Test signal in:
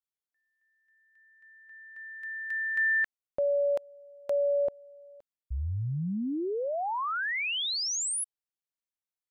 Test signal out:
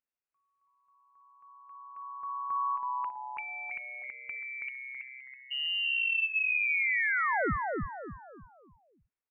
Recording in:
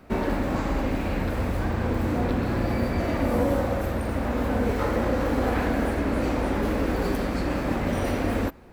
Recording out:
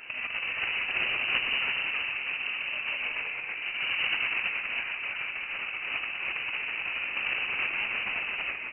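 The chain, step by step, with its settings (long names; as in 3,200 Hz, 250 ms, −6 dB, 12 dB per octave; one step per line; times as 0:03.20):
high-pass filter 80 Hz 12 dB per octave
compressor whose output falls as the input rises −31 dBFS, ratio −0.5
echo with shifted repeats 326 ms, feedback 37%, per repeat +130 Hz, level −3 dB
voice inversion scrambler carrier 2,900 Hz
level −1 dB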